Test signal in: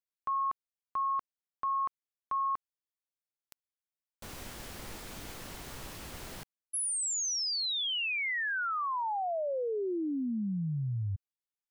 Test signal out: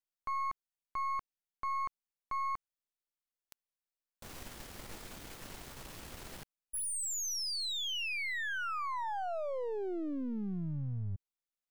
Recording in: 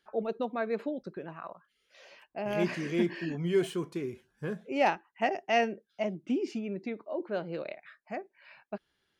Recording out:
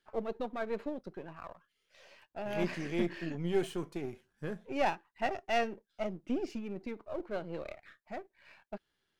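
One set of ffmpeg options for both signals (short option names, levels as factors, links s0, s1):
-af "aeval=exprs='if(lt(val(0),0),0.447*val(0),val(0))':c=same,volume=0.841"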